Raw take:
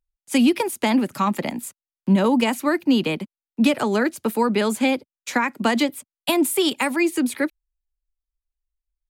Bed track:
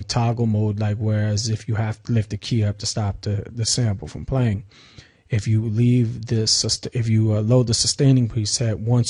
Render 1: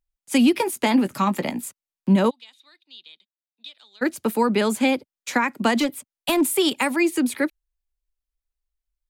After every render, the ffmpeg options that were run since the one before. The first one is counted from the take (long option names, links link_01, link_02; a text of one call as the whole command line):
ffmpeg -i in.wav -filter_complex "[0:a]asettb=1/sr,asplit=3[link_01][link_02][link_03];[link_01]atrim=end=0.534[link_04];[link_02]atrim=start=0.53:end=1.61,asetpts=PTS-STARTPTS,afade=type=in:duration=0.004:curve=qsin,afade=type=out:start_time=1.076:duration=0.004:curve=qsin,asplit=2[link_05][link_06];[link_06]adelay=16,volume=-11dB[link_07];[link_05][link_07]amix=inputs=2:normalize=0,atrim=end_sample=47628[link_08];[link_03]atrim=start=1.606[link_09];[link_04][link_08]acrossfade=duration=0.004:curve1=hsin:curve2=qsin[link_10];[link_10][link_09]acrossfade=duration=0.004:curve1=qsin:curve2=hsin,asplit=3[link_11][link_12][link_13];[link_11]afade=type=out:start_time=2.29:duration=0.02[link_14];[link_12]bandpass=frequency=3700:width_type=q:width=17,afade=type=in:start_time=2.29:duration=0.02,afade=type=out:start_time=4.01:duration=0.02[link_15];[link_13]afade=type=in:start_time=4.01:duration=0.02[link_16];[link_14][link_15][link_16]amix=inputs=3:normalize=0,asettb=1/sr,asplit=3[link_17][link_18][link_19];[link_17]atrim=end=5.804[link_20];[link_18]atrim=start=5.8:end=6.41,asetpts=PTS-STARTPTS,afade=type=in:duration=0.004:curve=qsin,afade=type=out:start_time=0.606:duration=0.004:curve=qsin,asoftclip=type=hard:threshold=-15.5dB[link_21];[link_19]atrim=start=6.406[link_22];[link_20][link_21]acrossfade=duration=0.004:curve1=hsin:curve2=qsin[link_23];[link_23][link_22]acrossfade=duration=0.004:curve1=qsin:curve2=hsin" out.wav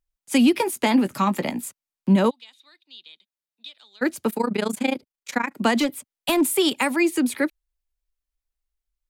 ffmpeg -i in.wav -filter_complex "[0:a]asplit=3[link_01][link_02][link_03];[link_01]afade=type=out:start_time=4.28:duration=0.02[link_04];[link_02]tremolo=f=27:d=0.919,afade=type=in:start_time=4.28:duration=0.02,afade=type=out:start_time=5.55:duration=0.02[link_05];[link_03]afade=type=in:start_time=5.55:duration=0.02[link_06];[link_04][link_05][link_06]amix=inputs=3:normalize=0" out.wav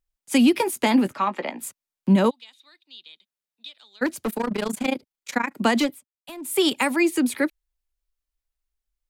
ffmpeg -i in.wav -filter_complex "[0:a]asplit=3[link_01][link_02][link_03];[link_01]afade=type=out:start_time=1.12:duration=0.02[link_04];[link_02]highpass=410,lowpass=3100,afade=type=in:start_time=1.12:duration=0.02,afade=type=out:start_time=1.6:duration=0.02[link_05];[link_03]afade=type=in:start_time=1.6:duration=0.02[link_06];[link_04][link_05][link_06]amix=inputs=3:normalize=0,asettb=1/sr,asplit=3[link_07][link_08][link_09];[link_07]atrim=end=4.064[link_10];[link_08]atrim=start=4.06:end=4.86,asetpts=PTS-STARTPTS,afade=type=in:duration=0.004:curve=qsin,afade=type=out:start_time=0.796:duration=0.004:curve=qsin,asoftclip=type=hard:threshold=-21dB[link_11];[link_09]atrim=start=4.856[link_12];[link_10][link_11]acrossfade=duration=0.004:curve1=hsin:curve2=qsin[link_13];[link_13][link_12]acrossfade=duration=0.004:curve1=qsin:curve2=hsin,asplit=3[link_14][link_15][link_16];[link_14]atrim=end=6.01,asetpts=PTS-STARTPTS,afade=type=out:start_time=5.85:duration=0.16:silence=0.133352[link_17];[link_15]atrim=start=6.01:end=6.43,asetpts=PTS-STARTPTS,volume=-17.5dB[link_18];[link_16]atrim=start=6.43,asetpts=PTS-STARTPTS,afade=type=in:duration=0.16:silence=0.133352[link_19];[link_17][link_18][link_19]concat=n=3:v=0:a=1" out.wav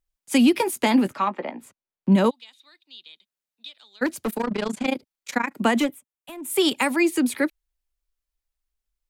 ffmpeg -i in.wav -filter_complex "[0:a]asettb=1/sr,asplit=3[link_01][link_02][link_03];[link_01]atrim=end=1.294[link_04];[link_02]atrim=start=1.29:end=2.12,asetpts=PTS-STARTPTS,afade=type=in:duration=0.004:curve=qsin,afade=type=out:start_time=0.826:duration=0.004:curve=qsin,lowpass=frequency=1300:poles=1[link_05];[link_03]atrim=start=2.116[link_06];[link_04][link_05]acrossfade=duration=0.004:curve1=hsin:curve2=qsin[link_07];[link_07][link_06]acrossfade=duration=0.004:curve1=qsin:curve2=hsin,asplit=3[link_08][link_09][link_10];[link_08]afade=type=out:start_time=4.43:duration=0.02[link_11];[link_09]lowpass=6900,afade=type=in:start_time=4.43:duration=0.02,afade=type=out:start_time=4.85:duration=0.02[link_12];[link_10]afade=type=in:start_time=4.85:duration=0.02[link_13];[link_11][link_12][link_13]amix=inputs=3:normalize=0,asettb=1/sr,asplit=3[link_14][link_15][link_16];[link_14]atrim=end=5.644[link_17];[link_15]atrim=start=5.64:end=6.5,asetpts=PTS-STARTPTS,afade=type=in:duration=0.004:curve=qsin,afade=type=out:start_time=0.856:duration=0.004:curve=qsin,equalizer=frequency=4600:width=2.8:gain=-10.5[link_18];[link_16]atrim=start=6.496[link_19];[link_17][link_18]acrossfade=duration=0.004:curve1=hsin:curve2=qsin[link_20];[link_20][link_19]acrossfade=duration=0.004:curve1=qsin:curve2=hsin" out.wav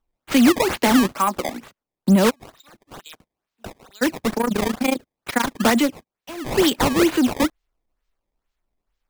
ffmpeg -i in.wav -filter_complex "[0:a]asplit=2[link_01][link_02];[link_02]volume=20.5dB,asoftclip=hard,volume=-20.5dB,volume=-3dB[link_03];[link_01][link_03]amix=inputs=2:normalize=0,acrusher=samples=18:mix=1:aa=0.000001:lfo=1:lforange=28.8:lforate=2.2" out.wav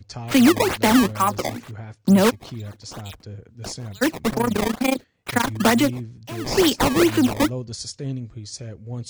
ffmpeg -i in.wav -i bed.wav -filter_complex "[1:a]volume=-13.5dB[link_01];[0:a][link_01]amix=inputs=2:normalize=0" out.wav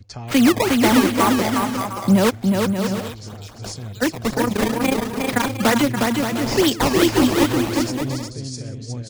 ffmpeg -i in.wav -af "aecho=1:1:360|576|705.6|783.4|830:0.631|0.398|0.251|0.158|0.1" out.wav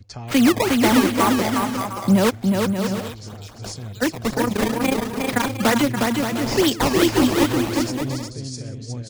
ffmpeg -i in.wav -af "volume=-1dB" out.wav